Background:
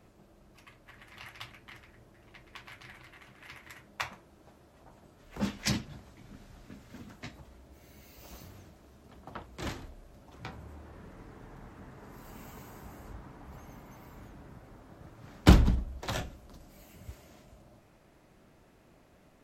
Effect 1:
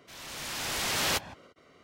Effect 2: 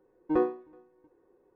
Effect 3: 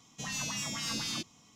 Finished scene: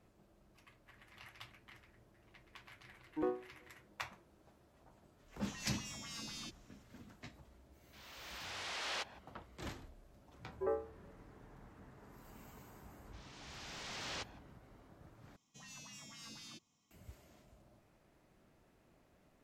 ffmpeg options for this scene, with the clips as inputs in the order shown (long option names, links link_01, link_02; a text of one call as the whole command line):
ffmpeg -i bed.wav -i cue0.wav -i cue1.wav -i cue2.wav -filter_complex "[2:a]asplit=2[link_01][link_02];[3:a]asplit=2[link_03][link_04];[1:a]asplit=2[link_05][link_06];[0:a]volume=-8.5dB[link_07];[link_05]highpass=480,lowpass=5000[link_08];[link_02]highpass=frequency=160:width_type=q:width=0.5412,highpass=frequency=160:width_type=q:width=1.307,lowpass=frequency=2200:width_type=q:width=0.5176,lowpass=frequency=2200:width_type=q:width=0.7071,lowpass=frequency=2200:width_type=q:width=1.932,afreqshift=74[link_09];[link_06]lowpass=frequency=6700:width=0.5412,lowpass=frequency=6700:width=1.3066[link_10];[link_07]asplit=2[link_11][link_12];[link_11]atrim=end=15.364[link_13];[link_04]atrim=end=1.55,asetpts=PTS-STARTPTS,volume=-17.5dB[link_14];[link_12]atrim=start=16.906[link_15];[link_01]atrim=end=1.55,asetpts=PTS-STARTPTS,volume=-11dB,afade=type=in:duration=0.004:curve=hsin,afade=type=out:start_time=1.546:duration=0.004:curve=hsin,adelay=2870[link_16];[link_03]atrim=end=1.55,asetpts=PTS-STARTPTS,volume=-12dB,afade=type=in:duration=0.004:curve=hsin,afade=type=out:start_time=1.546:duration=0.004:curve=hsin,adelay=5280[link_17];[link_08]atrim=end=1.83,asetpts=PTS-STARTPTS,volume=-10.5dB,afade=type=in:duration=0.004:curve=hsin,afade=type=out:start_time=1.826:duration=0.004:curve=hsin,adelay=7850[link_18];[link_09]atrim=end=1.55,asetpts=PTS-STARTPTS,volume=-11dB,afade=type=in:duration=0.004:curve=hsin,afade=type=out:start_time=1.546:duration=0.004:curve=hsin,adelay=10310[link_19];[link_10]atrim=end=1.83,asetpts=PTS-STARTPTS,volume=-15dB,afade=type=in:duration=0.004:curve=hsin,afade=type=out:start_time=1.826:duration=0.004:curve=hsin,adelay=13050[link_20];[link_13][link_14]acrossfade=duration=0.004:curve1=hsin:curve2=hsin[link_21];[link_21][link_15]acrossfade=duration=0.004:curve1=hsin:curve2=hsin[link_22];[link_22][link_16][link_17][link_18][link_19][link_20]amix=inputs=6:normalize=0" out.wav